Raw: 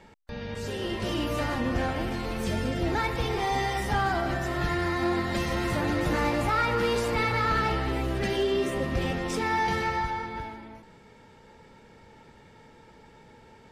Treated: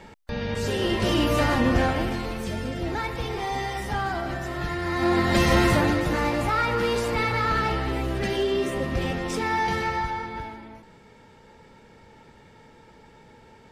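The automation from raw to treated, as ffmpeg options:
ffmpeg -i in.wav -af "volume=18.5dB,afade=type=out:start_time=1.69:duration=0.77:silence=0.375837,afade=type=in:start_time=4.82:duration=0.74:silence=0.266073,afade=type=out:start_time=5.56:duration=0.48:silence=0.375837" out.wav

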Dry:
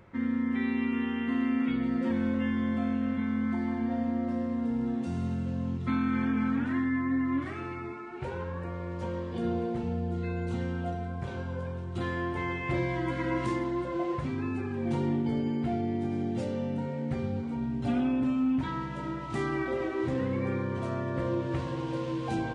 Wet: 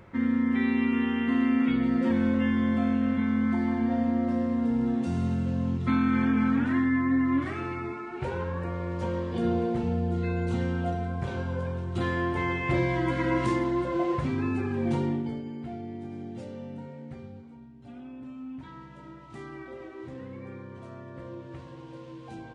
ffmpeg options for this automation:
ffmpeg -i in.wav -af "volume=12dB,afade=type=out:start_time=14.81:duration=0.61:silence=0.266073,afade=type=out:start_time=16.8:duration=0.94:silence=0.266073,afade=type=in:start_time=17.74:duration=1.1:silence=0.398107" out.wav

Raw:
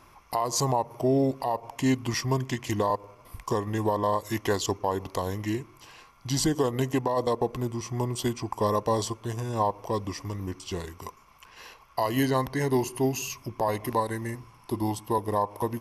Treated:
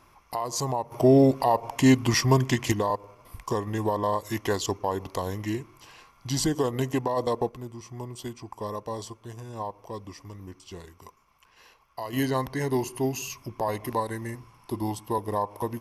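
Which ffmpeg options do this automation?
ffmpeg -i in.wav -af "asetnsamples=nb_out_samples=441:pad=0,asendcmd='0.92 volume volume 6dB;2.72 volume volume -0.5dB;7.49 volume volume -8.5dB;12.13 volume volume -1.5dB',volume=-3dB" out.wav

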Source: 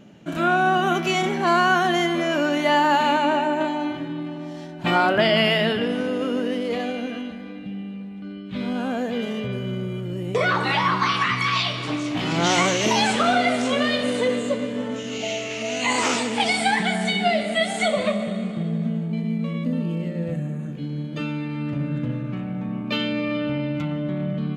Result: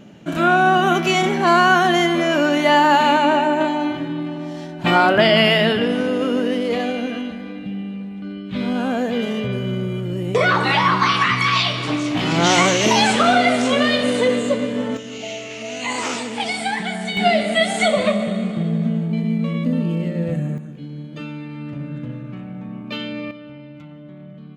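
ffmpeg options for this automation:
ffmpeg -i in.wav -af "asetnsamples=nb_out_samples=441:pad=0,asendcmd='14.97 volume volume -2.5dB;17.17 volume volume 4.5dB;20.58 volume volume -3.5dB;23.31 volume volume -13dB',volume=4.5dB" out.wav

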